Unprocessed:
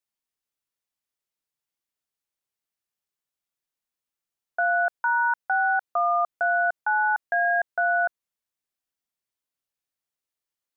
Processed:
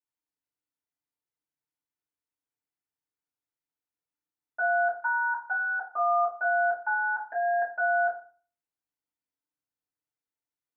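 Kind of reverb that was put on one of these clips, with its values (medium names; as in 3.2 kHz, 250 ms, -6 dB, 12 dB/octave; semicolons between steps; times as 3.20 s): FDN reverb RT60 0.41 s, low-frequency decay 1.35×, high-frequency decay 0.3×, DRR -8.5 dB; trim -14.5 dB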